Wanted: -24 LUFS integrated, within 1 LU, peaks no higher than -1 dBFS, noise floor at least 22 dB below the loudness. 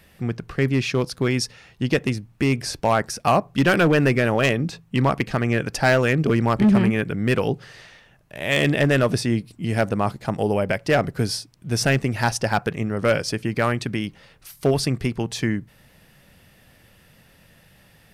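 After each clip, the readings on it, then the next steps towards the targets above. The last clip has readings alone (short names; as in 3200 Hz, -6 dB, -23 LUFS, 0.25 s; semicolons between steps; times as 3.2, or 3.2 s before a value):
clipped 0.8%; flat tops at -11.0 dBFS; loudness -22.0 LUFS; peak -11.0 dBFS; loudness target -24.0 LUFS
-> clip repair -11 dBFS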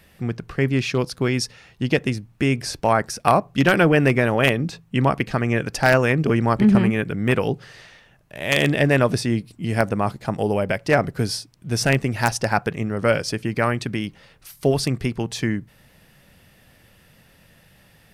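clipped 0.0%; loudness -21.0 LUFS; peak -2.0 dBFS; loudness target -24.0 LUFS
-> gain -3 dB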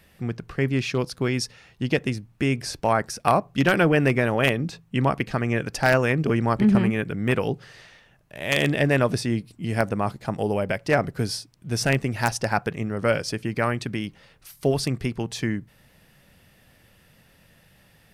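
loudness -24.0 LUFS; peak -5.0 dBFS; noise floor -58 dBFS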